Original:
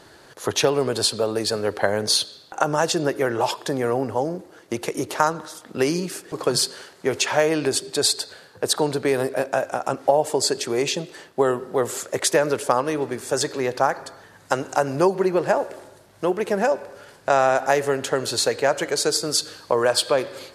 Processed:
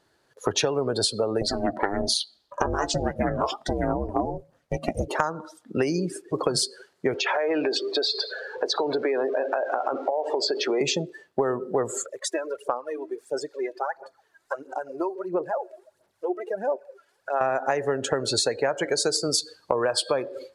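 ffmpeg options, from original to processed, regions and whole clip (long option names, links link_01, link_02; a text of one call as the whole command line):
ffmpeg -i in.wav -filter_complex "[0:a]asettb=1/sr,asplit=3[link_01][link_02][link_03];[link_01]atrim=end=1.414[link_04];[link_02]atrim=start=1.41:end=5.08,asetpts=PTS-STARTPTS,afade=type=in:duration=0.004:curve=qsin,afade=type=out:start_time=3.666:duration=0.004:curve=qsin,asplit=2[link_05][link_06];[link_06]adelay=14,volume=-11dB[link_07];[link_05][link_07]amix=inputs=2:normalize=0,atrim=end_sample=161847,aphaser=in_gain=1:out_gain=1:delay=2.1:decay=0.39:speed=1.6:type=triangular,aeval=exprs='val(0)*sin(2*PI*200*n/s)':channel_layout=same[link_08];[link_03]atrim=start=5.076[link_09];[link_04][link_08]acrossfade=duration=0.004:curve1=hsin:curve2=qsin[link_10];[link_10][link_09]acrossfade=duration=0.004:curve1=qsin:curve2=hsin,asettb=1/sr,asplit=3[link_11][link_12][link_13];[link_11]atrim=end=7.144[link_14];[link_12]atrim=start=7.14:end=10.81,asetpts=PTS-STARTPTS,afade=type=in:duration=0.004:curve=qsin,afade=type=out:start_time=3.666:duration=0.004:curve=qsin,aeval=exprs='val(0)+0.5*0.0299*sgn(val(0))':channel_layout=same,acrossover=split=270 5500:gain=0.126 1 0.0708[link_15][link_16][link_17];[link_15][link_16][link_17]amix=inputs=3:normalize=0,acompressor=threshold=-22dB:ratio=6:attack=3.2:release=140:knee=1:detection=peak[link_18];[link_13]atrim=start=10.806[link_19];[link_14][link_18]acrossfade=duration=0.004:curve1=hsin:curve2=qsin[link_20];[link_20][link_19]acrossfade=duration=0.004:curve1=qsin:curve2=hsin,asettb=1/sr,asplit=3[link_21][link_22][link_23];[link_21]atrim=end=12.054[link_24];[link_22]atrim=start=12.05:end=17.41,asetpts=PTS-STARTPTS,afade=type=in:duration=0.004:curve=qsin,afade=type=out:start_time=5.356:duration=0.004:curve=qsin,equalizer=frequency=77:width=0.34:gain=-14,acompressor=threshold=-50dB:ratio=1.5:attack=3.2:release=140:knee=1:detection=peak,aphaser=in_gain=1:out_gain=1:delay=3.1:decay=0.59:speed=1.5:type=sinusoidal[link_25];[link_23]atrim=start=17.406[link_26];[link_24][link_25]acrossfade=duration=0.004:curve1=hsin:curve2=qsin[link_27];[link_27][link_26]acrossfade=duration=0.004:curve1=qsin:curve2=hsin,afftdn=noise_reduction=23:noise_floor=-31,acompressor=threshold=-26dB:ratio=6,volume=5dB" out.wav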